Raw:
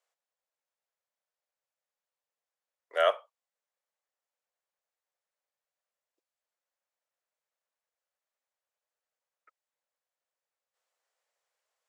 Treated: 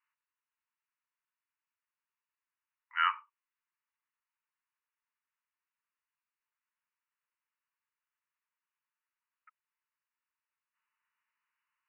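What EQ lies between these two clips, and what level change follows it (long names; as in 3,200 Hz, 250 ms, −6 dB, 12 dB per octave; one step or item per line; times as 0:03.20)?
linear-phase brick-wall band-pass 870–3,000 Hz
+2.0 dB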